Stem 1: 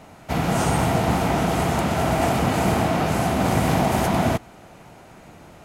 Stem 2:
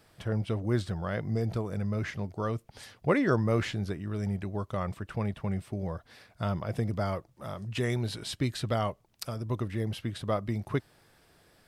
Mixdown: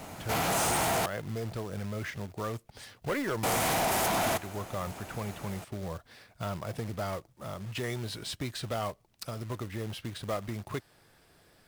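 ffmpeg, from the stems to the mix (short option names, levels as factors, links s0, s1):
-filter_complex "[0:a]highshelf=f=5800:g=9,volume=1.12,asplit=3[s0][s1][s2];[s0]atrim=end=1.06,asetpts=PTS-STARTPTS,afade=t=out:st=1.056:d=0.004:c=hsin[s3];[s1]atrim=start=1.06:end=3.43,asetpts=PTS-STARTPTS,volume=0[s4];[s2]atrim=start=3.43,asetpts=PTS-STARTPTS,afade=t=in:d=0.004:c=hsin[s5];[s3][s4][s5]concat=n=3:v=0:a=1[s6];[1:a]volume=1[s7];[s6][s7]amix=inputs=2:normalize=0,acrossover=split=430|3000[s8][s9][s10];[s8]acompressor=threshold=0.0126:ratio=2[s11];[s11][s9][s10]amix=inputs=3:normalize=0,asoftclip=type=tanh:threshold=0.0501,acrusher=bits=3:mode=log:mix=0:aa=0.000001"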